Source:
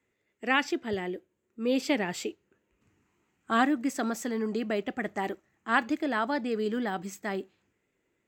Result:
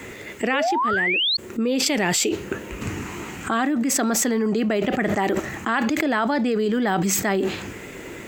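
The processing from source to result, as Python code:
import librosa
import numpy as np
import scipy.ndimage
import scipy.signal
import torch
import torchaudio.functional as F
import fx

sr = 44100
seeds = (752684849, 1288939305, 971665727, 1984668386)

y = fx.spec_paint(x, sr, seeds[0], shape='rise', start_s=0.53, length_s=0.84, low_hz=490.0, high_hz=4500.0, level_db=-28.0)
y = fx.peak_eq(y, sr, hz=9700.0, db=9.5, octaves=1.9, at=(1.86, 2.29))
y = fx.env_flatten(y, sr, amount_pct=100)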